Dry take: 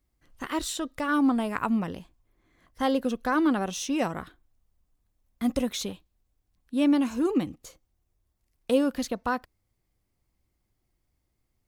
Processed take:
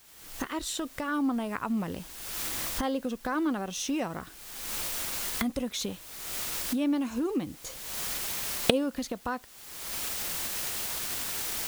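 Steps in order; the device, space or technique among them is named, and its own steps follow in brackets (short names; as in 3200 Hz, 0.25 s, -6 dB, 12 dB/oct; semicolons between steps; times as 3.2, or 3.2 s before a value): cheap recorder with automatic gain (white noise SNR 23 dB; recorder AGC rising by 41 dB/s); gain -5.5 dB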